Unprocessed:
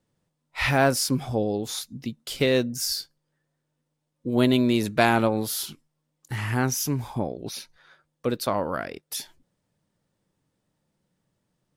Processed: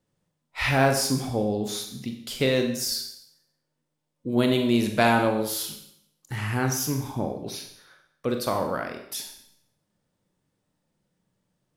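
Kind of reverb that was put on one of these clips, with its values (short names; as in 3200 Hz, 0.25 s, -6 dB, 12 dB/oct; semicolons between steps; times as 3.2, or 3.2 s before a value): Schroeder reverb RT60 0.7 s, combs from 30 ms, DRR 4.5 dB; gain -1.5 dB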